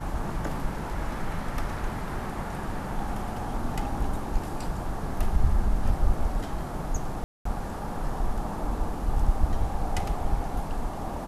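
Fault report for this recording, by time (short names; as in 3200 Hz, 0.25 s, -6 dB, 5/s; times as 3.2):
7.24–7.45 gap 0.214 s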